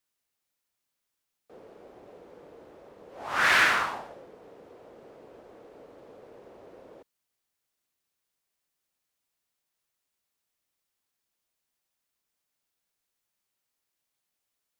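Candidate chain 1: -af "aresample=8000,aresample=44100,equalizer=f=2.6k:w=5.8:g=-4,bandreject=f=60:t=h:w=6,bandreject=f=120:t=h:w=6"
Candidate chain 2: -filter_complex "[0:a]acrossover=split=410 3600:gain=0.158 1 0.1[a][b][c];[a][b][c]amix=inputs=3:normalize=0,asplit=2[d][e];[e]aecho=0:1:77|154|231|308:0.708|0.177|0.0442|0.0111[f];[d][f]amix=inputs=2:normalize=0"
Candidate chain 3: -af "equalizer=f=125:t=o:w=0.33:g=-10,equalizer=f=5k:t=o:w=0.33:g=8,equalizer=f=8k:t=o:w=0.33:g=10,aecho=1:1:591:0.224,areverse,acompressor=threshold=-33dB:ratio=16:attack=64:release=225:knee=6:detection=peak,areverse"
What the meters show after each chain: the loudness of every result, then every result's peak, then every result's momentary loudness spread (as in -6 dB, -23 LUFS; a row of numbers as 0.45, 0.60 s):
-24.0, -22.5, -34.5 LUFS; -10.0, -7.5, -21.0 dBFS; 20, 14, 19 LU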